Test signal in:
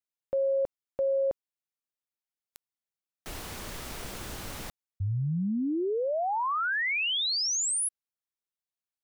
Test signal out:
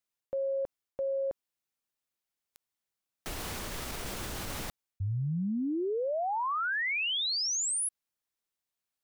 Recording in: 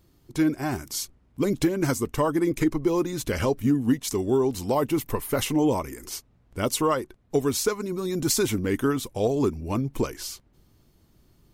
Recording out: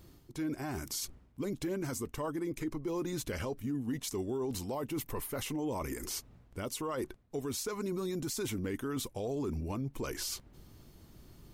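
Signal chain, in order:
reversed playback
downward compressor 10 to 1, threshold −34 dBFS
reversed playback
brickwall limiter −32.5 dBFS
level +4.5 dB

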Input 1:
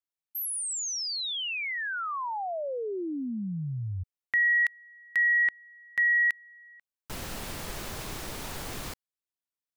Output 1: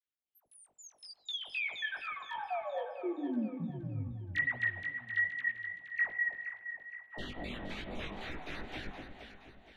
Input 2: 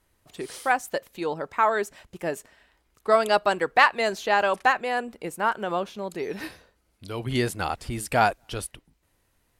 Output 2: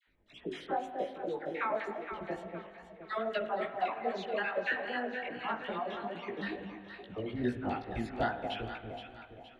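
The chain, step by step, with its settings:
time-frequency cells dropped at random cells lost 33%
octave-band graphic EQ 125/250/500/1,000/2,000/4,000/8,000 Hz −5/+5/−3/−5/+7/−3/−6 dB
auto-filter low-pass square 3.9 Hz 720–4,000 Hz
downward compressor 2 to 1, threshold −34 dBFS
parametric band 5,000 Hz −10.5 dB 0.43 octaves
all-pass dispersion lows, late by 77 ms, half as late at 920 Hz
on a send: delay that swaps between a low-pass and a high-pass 235 ms, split 830 Hz, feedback 65%, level −5 dB
on the sum: spring reverb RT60 2.1 s, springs 45 ms, chirp 60 ms, DRR 10.5 dB
chorus effect 2.4 Hz, delay 16 ms, depth 4 ms
hum removal 255.8 Hz, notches 14

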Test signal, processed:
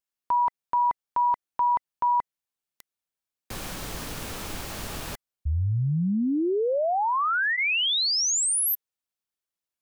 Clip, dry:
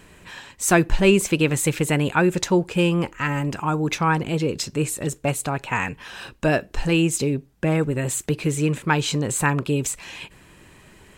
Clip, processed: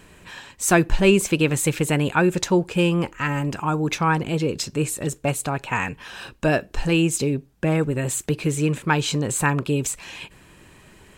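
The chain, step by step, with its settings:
notch filter 2,000 Hz, Q 28

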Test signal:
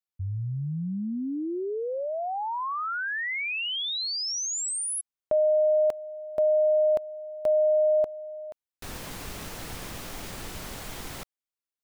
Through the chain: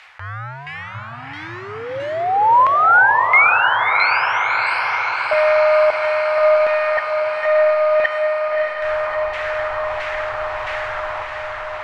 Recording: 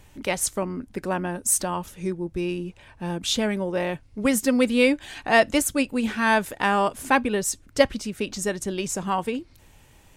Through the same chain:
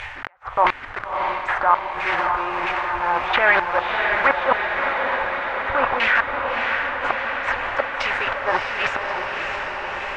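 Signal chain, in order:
one scale factor per block 3 bits
upward compression 4 to 1, threshold −38 dBFS
drawn EQ curve 110 Hz 0 dB, 190 Hz −21 dB, 790 Hz +13 dB
treble cut that deepens with the level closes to 1,600 Hz, closed at −9 dBFS
transient designer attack −4 dB, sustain +11 dB
gate with flip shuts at −7 dBFS, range −41 dB
auto-filter low-pass saw down 1.5 Hz 930–2,300 Hz
on a send: feedback delay with all-pass diffusion 623 ms, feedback 75%, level −4 dB
on the sum: level −1 dB

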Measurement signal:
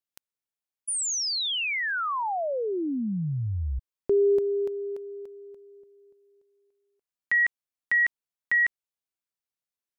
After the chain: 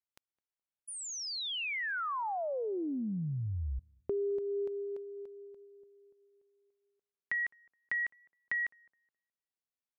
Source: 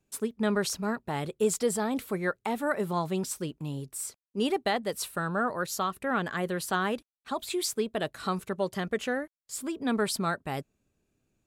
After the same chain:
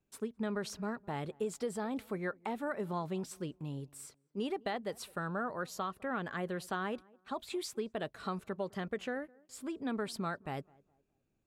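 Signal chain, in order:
high-shelf EQ 5,300 Hz −11 dB
downward compressor, threshold −26 dBFS
on a send: tape delay 209 ms, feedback 39%, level −23.5 dB, low-pass 1,000 Hz
on the sum: level −5.5 dB

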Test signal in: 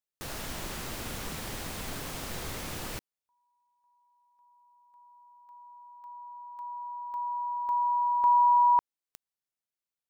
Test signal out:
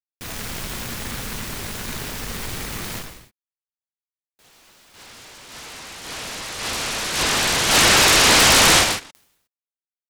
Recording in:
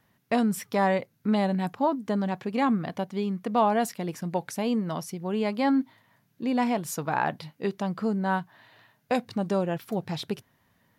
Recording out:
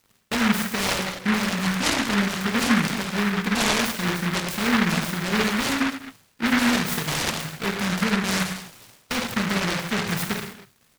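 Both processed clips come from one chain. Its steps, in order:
brickwall limiter −23 dBFS
bit-depth reduction 10 bits, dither none
reverb whose tail is shaped and stops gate 330 ms falling, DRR −0.5 dB
downsampling to 32,000 Hz
short delay modulated by noise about 1,500 Hz, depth 0.4 ms
level +5 dB

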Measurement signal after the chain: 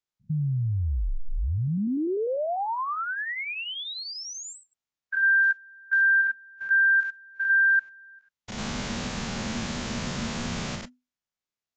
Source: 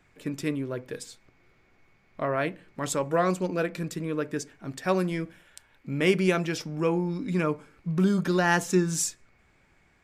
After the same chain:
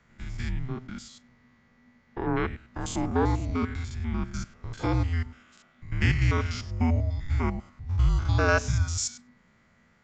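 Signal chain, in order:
spectrum averaged block by block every 100 ms
frequency shifter −250 Hz
level +2 dB
AAC 48 kbit/s 16,000 Hz

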